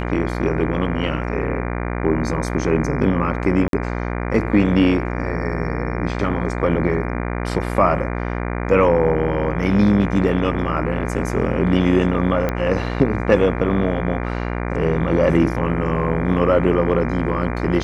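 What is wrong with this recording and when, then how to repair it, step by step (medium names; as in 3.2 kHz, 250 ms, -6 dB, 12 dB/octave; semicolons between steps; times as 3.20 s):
buzz 60 Hz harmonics 40 -24 dBFS
3.68–3.73 s: dropout 52 ms
12.49 s: pop -9 dBFS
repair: de-click; de-hum 60 Hz, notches 40; interpolate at 3.68 s, 52 ms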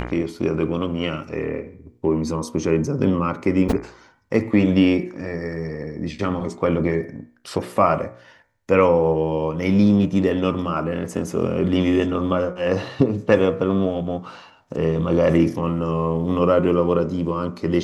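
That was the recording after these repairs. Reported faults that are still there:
nothing left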